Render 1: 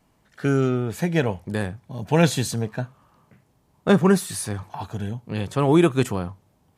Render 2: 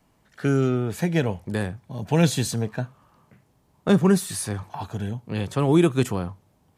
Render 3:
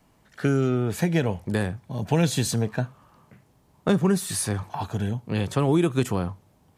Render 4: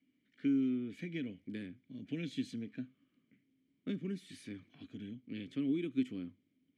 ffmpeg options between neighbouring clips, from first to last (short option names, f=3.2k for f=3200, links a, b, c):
-filter_complex "[0:a]acrossover=split=390|3000[a][b][c];[b]acompressor=threshold=-28dB:ratio=2[d];[a][d][c]amix=inputs=3:normalize=0"
-af "acompressor=threshold=-21dB:ratio=3,volume=2.5dB"
-filter_complex "[0:a]asplit=3[a][b][c];[a]bandpass=f=270:t=q:w=8,volume=0dB[d];[b]bandpass=f=2.29k:t=q:w=8,volume=-6dB[e];[c]bandpass=f=3.01k:t=q:w=8,volume=-9dB[f];[d][e][f]amix=inputs=3:normalize=0,volume=-3.5dB"